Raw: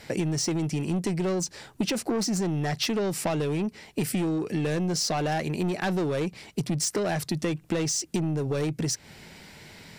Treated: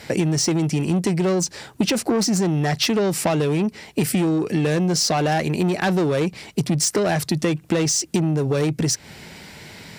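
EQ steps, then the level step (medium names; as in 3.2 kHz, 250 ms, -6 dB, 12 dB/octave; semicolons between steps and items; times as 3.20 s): high-pass 43 Hz; +7.0 dB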